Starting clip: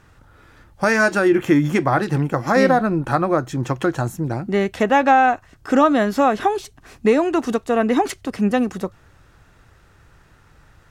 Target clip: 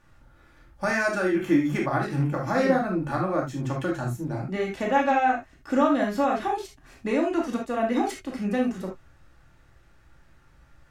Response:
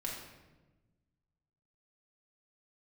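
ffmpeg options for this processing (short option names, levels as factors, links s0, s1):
-filter_complex "[1:a]atrim=start_sample=2205,afade=t=out:st=0.14:d=0.01,atrim=end_sample=6615,asetrate=48510,aresample=44100[s0];[0:a][s0]afir=irnorm=-1:irlink=0,volume=0.473"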